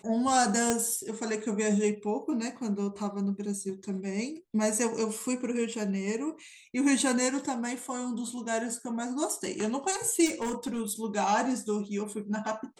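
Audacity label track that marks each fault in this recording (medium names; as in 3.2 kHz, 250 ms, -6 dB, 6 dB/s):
0.700000	0.700000	pop -11 dBFS
10.250000	10.810000	clipped -27.5 dBFS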